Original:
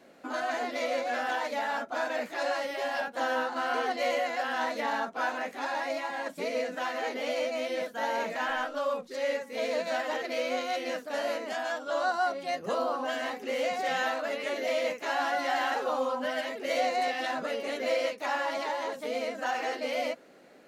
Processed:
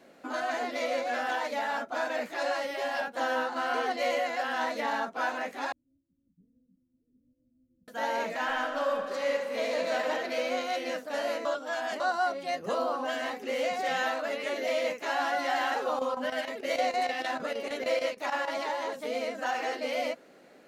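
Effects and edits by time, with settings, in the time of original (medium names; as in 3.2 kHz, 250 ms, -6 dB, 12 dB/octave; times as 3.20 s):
5.72–7.88 s: inverse Chebyshev low-pass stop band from 760 Hz, stop band 80 dB
8.40–10.04 s: reverb throw, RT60 2.9 s, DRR 4 dB
11.45–12.00 s: reverse
15.86–18.50 s: square tremolo 6.5 Hz, depth 65%, duty 85%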